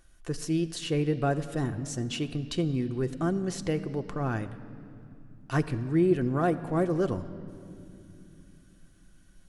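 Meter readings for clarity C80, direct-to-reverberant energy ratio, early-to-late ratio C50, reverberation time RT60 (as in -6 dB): 14.0 dB, 7.5 dB, 13.5 dB, 2.7 s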